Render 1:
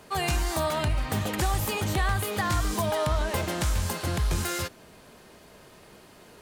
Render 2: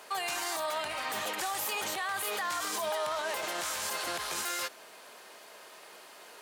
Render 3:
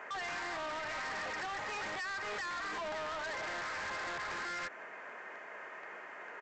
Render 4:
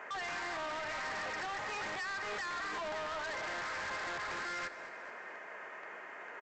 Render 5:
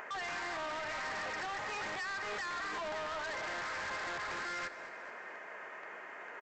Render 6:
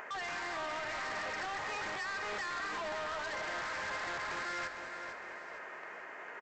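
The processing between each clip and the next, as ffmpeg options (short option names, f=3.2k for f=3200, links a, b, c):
-af "highpass=630,alimiter=level_in=4dB:limit=-24dB:level=0:latency=1:release=43,volume=-4dB,volume=3.5dB"
-af "highshelf=f=2.8k:t=q:w=3:g=-13.5,acompressor=threshold=-32dB:ratio=6,aresample=16000,asoftclip=type=hard:threshold=-39.5dB,aresample=44100,volume=2dB"
-af "aecho=1:1:217|434|651|868|1085:0.178|0.0996|0.0558|0.0312|0.0175"
-af "acompressor=mode=upward:threshold=-46dB:ratio=2.5"
-af "aecho=1:1:457|914|1371|1828:0.335|0.137|0.0563|0.0231"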